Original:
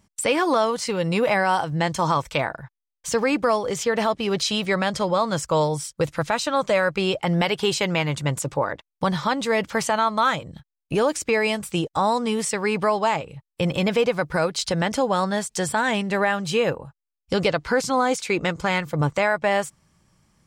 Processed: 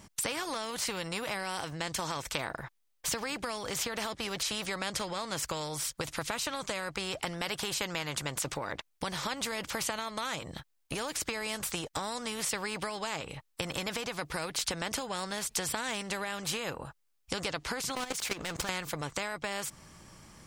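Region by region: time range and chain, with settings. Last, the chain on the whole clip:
17.95–18.69 s: waveshaping leveller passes 2 + level held to a coarse grid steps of 16 dB
whole clip: compression, threshold -26 dBFS; spectrum-flattening compressor 2:1

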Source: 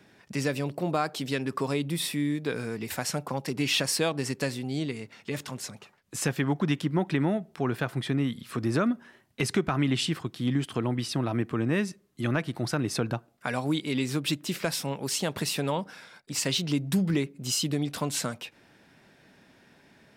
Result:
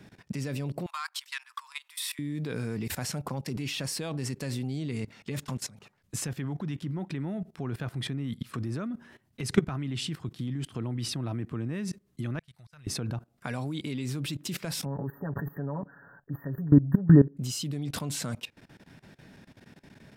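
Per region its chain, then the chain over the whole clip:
0.86–2.19 s: Chebyshev high-pass 980 Hz, order 5 + transformer saturation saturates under 1.6 kHz
12.39–12.87 s: amplifier tone stack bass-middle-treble 10-0-10 + slow attack 515 ms
14.85–17.37 s: brick-wall FIR band-stop 1.9–14 kHz + comb 7.1 ms, depth 87%
whole clip: bass shelf 200 Hz +6.5 dB; level held to a coarse grid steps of 19 dB; tone controls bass +4 dB, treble +1 dB; trim +3 dB

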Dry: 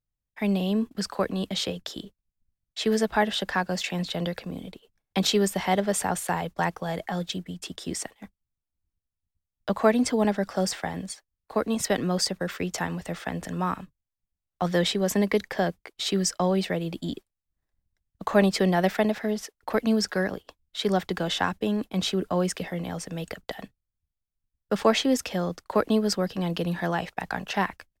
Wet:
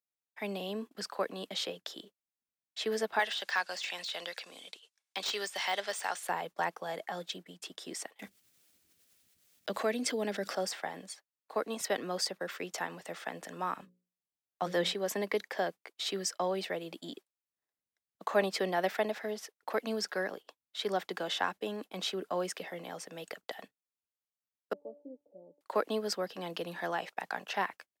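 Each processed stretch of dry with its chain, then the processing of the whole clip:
3.19–6.23 s: frequency weighting ITU-R 468 + de-esser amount 70%
8.19–10.55 s: peaking EQ 940 Hz -11 dB 1.2 oct + level flattener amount 50%
13.75–14.94 s: bass shelf 190 Hz +11.5 dB + hum notches 60/120/180/240/300/360/420/480/540 Hz
24.73–25.61 s: steep low-pass 600 Hz + feedback comb 290 Hz, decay 0.31 s, mix 90%
whole clip: high-pass 380 Hz 12 dB/octave; dynamic bell 7.6 kHz, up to -3 dB, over -44 dBFS, Q 1.2; trim -5.5 dB

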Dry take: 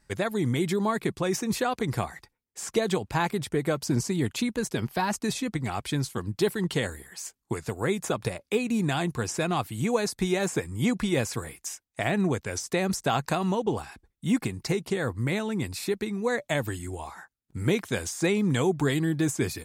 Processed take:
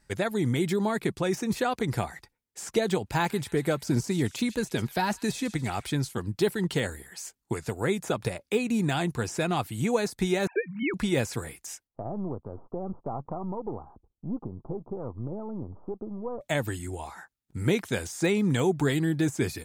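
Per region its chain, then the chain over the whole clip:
3.06–5.90 s: treble shelf 3.7 kHz +3.5 dB + feedback echo behind a high-pass 140 ms, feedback 51%, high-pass 2 kHz, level -18 dB
10.47–10.94 s: formants replaced by sine waves + bass shelf 350 Hz -6.5 dB
11.87–16.41 s: partial rectifier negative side -7 dB + steep low-pass 1.2 kHz 72 dB/octave + compression 1.5:1, threshold -37 dBFS
whole clip: de-esser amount 70%; band-stop 1.1 kHz, Q 13

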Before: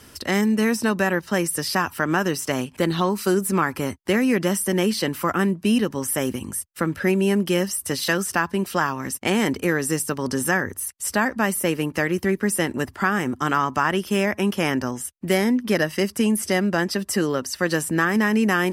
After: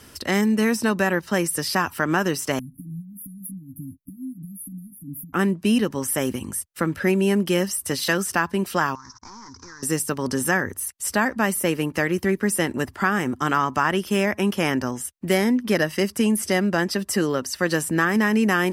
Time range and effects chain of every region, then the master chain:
2.59–5.33 s: compression 20:1, threshold -30 dBFS + brick-wall FIR band-stop 300–9700 Hz + comb 6.8 ms, depth 78%
8.95–9.83 s: CVSD coder 32 kbps + FFT filter 110 Hz 0 dB, 170 Hz -15 dB, 250 Hz -9 dB, 630 Hz -25 dB, 970 Hz +8 dB, 1.5 kHz +1 dB, 2.9 kHz -26 dB, 5.6 kHz +14 dB, 13 kHz -10 dB + compression, threshold -39 dBFS
whole clip: none

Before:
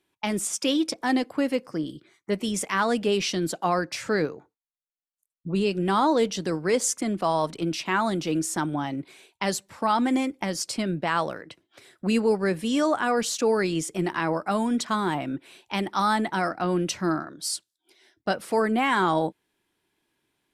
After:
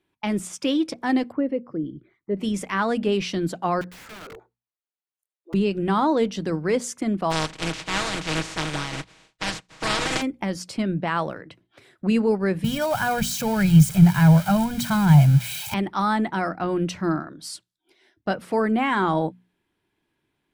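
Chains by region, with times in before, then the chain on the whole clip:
1.32–2.37 s: resonances exaggerated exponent 1.5 + tape spacing loss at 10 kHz 27 dB
3.81–5.54 s: steep high-pass 350 Hz 72 dB/octave + compression 16:1, threshold -34 dBFS + integer overflow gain 35.5 dB
7.30–10.21 s: spectral contrast reduction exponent 0.18 + low-pass 7.9 kHz 24 dB/octave + comb 6.3 ms, depth 70%
12.64–15.74 s: zero-crossing glitches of -19.5 dBFS + resonant low shelf 200 Hz +11.5 dB, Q 3 + comb 1.3 ms, depth 64%
whole clip: tone controls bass +6 dB, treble -8 dB; hum notches 60/120/180/240 Hz

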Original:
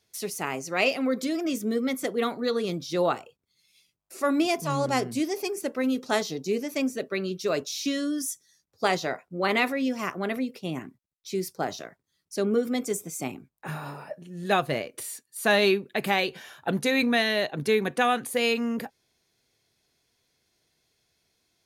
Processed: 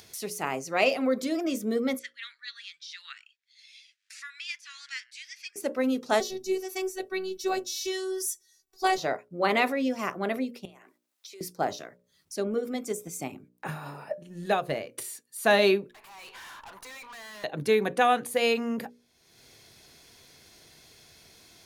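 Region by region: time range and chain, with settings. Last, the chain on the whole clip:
1.99–5.56 s: elliptic high-pass 1.7 kHz, stop band 60 dB + distance through air 110 m
6.20–8.98 s: treble shelf 4.5 kHz +6 dB + robot voice 377 Hz
10.65–11.41 s: high-pass 480 Hz 24 dB/octave + compression 16:1, threshold -49 dBFS
12.35–15.26 s: compression 1.5:1, threshold -34 dBFS + transient shaper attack +6 dB, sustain -2 dB
15.89–17.44 s: compression 3:1, threshold -35 dBFS + resonant high-pass 1 kHz + valve stage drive 48 dB, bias 0.4
whole clip: hum notches 60/120/180/240/300/360/420/480/540/600 Hz; dynamic bell 650 Hz, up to +5 dB, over -35 dBFS, Q 0.97; upward compressor, threshold -36 dBFS; trim -2 dB

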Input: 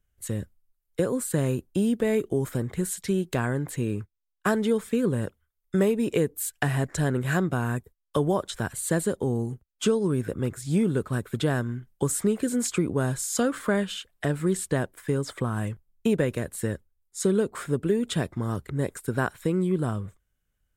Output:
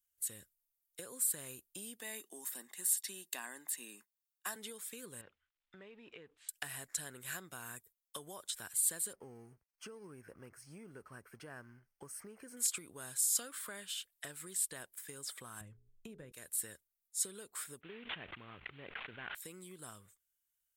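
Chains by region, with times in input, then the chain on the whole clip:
2.00–4.56 s: steep high-pass 220 Hz + comb 1.1 ms, depth 49%
5.21–6.49 s: companding laws mixed up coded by mu + low-pass 3 kHz 24 dB/octave + compression 3:1, threshold -31 dBFS
9.13–12.57 s: companding laws mixed up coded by mu + boxcar filter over 12 samples
15.61–16.32 s: tilt EQ -4.5 dB/octave + hum notches 60/120/180/240/300/360/420/480 Hz + upward compressor, threshold -27 dBFS
17.81–19.35 s: CVSD coder 16 kbps + decay stretcher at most 25 dB/s
whole clip: dynamic bell 6.5 kHz, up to -5 dB, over -53 dBFS, Q 3.7; compression, threshold -23 dBFS; pre-emphasis filter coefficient 0.97

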